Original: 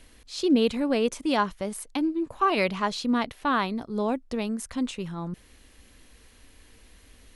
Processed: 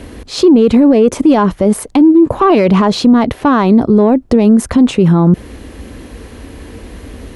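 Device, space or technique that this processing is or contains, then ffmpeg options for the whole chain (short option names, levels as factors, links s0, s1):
mastering chain: -af "highpass=57,equalizer=f=360:t=o:w=0.77:g=2.5,acompressor=threshold=0.0631:ratio=3,asoftclip=type=tanh:threshold=0.112,tiltshelf=f=1400:g=8,alimiter=level_in=11.9:limit=0.891:release=50:level=0:latency=1,volume=0.891"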